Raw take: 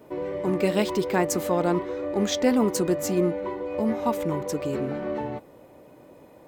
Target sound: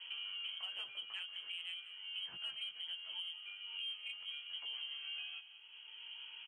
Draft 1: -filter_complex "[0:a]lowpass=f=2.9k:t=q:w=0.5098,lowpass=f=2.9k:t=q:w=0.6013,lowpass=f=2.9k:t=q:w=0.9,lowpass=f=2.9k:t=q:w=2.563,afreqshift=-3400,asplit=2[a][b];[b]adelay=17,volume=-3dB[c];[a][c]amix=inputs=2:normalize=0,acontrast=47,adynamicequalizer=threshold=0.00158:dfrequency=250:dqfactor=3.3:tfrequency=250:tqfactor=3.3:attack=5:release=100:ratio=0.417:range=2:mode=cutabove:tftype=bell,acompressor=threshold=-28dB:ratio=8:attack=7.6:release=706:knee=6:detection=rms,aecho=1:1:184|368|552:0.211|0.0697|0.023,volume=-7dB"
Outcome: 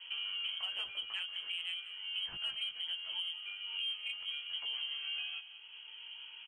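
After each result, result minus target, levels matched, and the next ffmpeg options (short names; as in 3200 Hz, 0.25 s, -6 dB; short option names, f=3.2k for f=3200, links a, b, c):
compressor: peak gain reduction -5.5 dB; 125 Hz band +2.5 dB
-filter_complex "[0:a]lowpass=f=2.9k:t=q:w=0.5098,lowpass=f=2.9k:t=q:w=0.6013,lowpass=f=2.9k:t=q:w=0.9,lowpass=f=2.9k:t=q:w=2.563,afreqshift=-3400,asplit=2[a][b];[b]adelay=17,volume=-3dB[c];[a][c]amix=inputs=2:normalize=0,acontrast=47,adynamicequalizer=threshold=0.00158:dfrequency=250:dqfactor=3.3:tfrequency=250:tqfactor=3.3:attack=5:release=100:ratio=0.417:range=2:mode=cutabove:tftype=bell,acompressor=threshold=-34dB:ratio=8:attack=7.6:release=706:knee=6:detection=rms,aecho=1:1:184|368|552:0.211|0.0697|0.023,volume=-7dB"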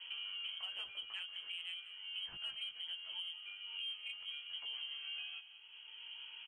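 125 Hz band +2.5 dB
-filter_complex "[0:a]lowpass=f=2.9k:t=q:w=0.5098,lowpass=f=2.9k:t=q:w=0.6013,lowpass=f=2.9k:t=q:w=0.9,lowpass=f=2.9k:t=q:w=2.563,afreqshift=-3400,asplit=2[a][b];[b]adelay=17,volume=-3dB[c];[a][c]amix=inputs=2:normalize=0,acontrast=47,adynamicequalizer=threshold=0.00158:dfrequency=250:dqfactor=3.3:tfrequency=250:tqfactor=3.3:attack=5:release=100:ratio=0.417:range=2:mode=cutabove:tftype=bell,highpass=120,acompressor=threshold=-34dB:ratio=8:attack=7.6:release=706:knee=6:detection=rms,aecho=1:1:184|368|552:0.211|0.0697|0.023,volume=-7dB"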